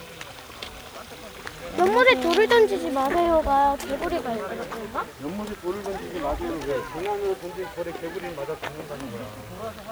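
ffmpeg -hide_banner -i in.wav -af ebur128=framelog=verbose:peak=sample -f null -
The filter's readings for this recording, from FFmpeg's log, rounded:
Integrated loudness:
  I:         -24.5 LUFS
  Threshold: -35.4 LUFS
Loudness range:
  LRA:         9.7 LU
  Threshold: -44.8 LUFS
  LRA low:   -30.8 LUFS
  LRA high:  -21.1 LUFS
Sample peak:
  Peak:       -2.8 dBFS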